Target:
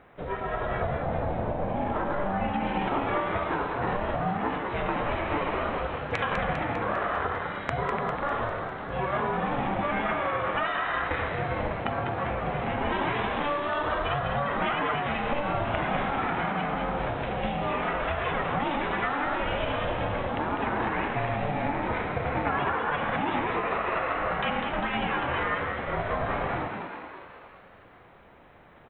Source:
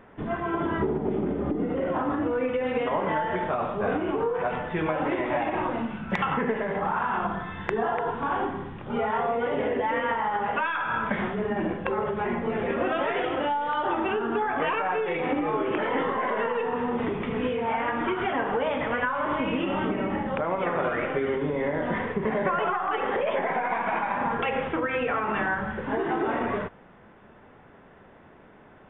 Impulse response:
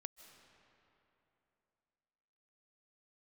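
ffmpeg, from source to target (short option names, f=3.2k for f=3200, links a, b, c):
-filter_complex "[0:a]crystalizer=i=1.5:c=0,aeval=exprs='val(0)*sin(2*PI*290*n/s)':c=same,bandreject=f=50:t=h:w=6,bandreject=f=100:t=h:w=6,bandreject=f=150:t=h:w=6,asplit=2[a][b];[b]asplit=8[c][d][e][f][g][h][i][j];[c]adelay=200,afreqshift=87,volume=-6dB[k];[d]adelay=400,afreqshift=174,volume=-10.6dB[l];[e]adelay=600,afreqshift=261,volume=-15.2dB[m];[f]adelay=800,afreqshift=348,volume=-19.7dB[n];[g]adelay=1000,afreqshift=435,volume=-24.3dB[o];[h]adelay=1200,afreqshift=522,volume=-28.9dB[p];[i]adelay=1400,afreqshift=609,volume=-33.5dB[q];[j]adelay=1600,afreqshift=696,volume=-38.1dB[r];[k][l][m][n][o][p][q][r]amix=inputs=8:normalize=0[s];[a][s]amix=inputs=2:normalize=0"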